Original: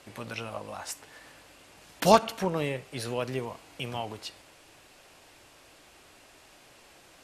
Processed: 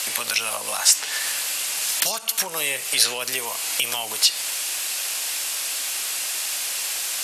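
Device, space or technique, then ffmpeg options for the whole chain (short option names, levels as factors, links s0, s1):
mastering chain: -filter_complex "[0:a]equalizer=f=340:t=o:w=0.22:g=-3.5,acrossover=split=350|6900[s0][s1][s2];[s0]acompressor=threshold=0.00562:ratio=4[s3];[s1]acompressor=threshold=0.01:ratio=4[s4];[s2]acompressor=threshold=0.00158:ratio=4[s5];[s3][s4][s5]amix=inputs=3:normalize=0,acompressor=threshold=0.00355:ratio=1.5,alimiter=level_in=47.3:limit=0.891:release=50:level=0:latency=1,aderivative,volume=1.12"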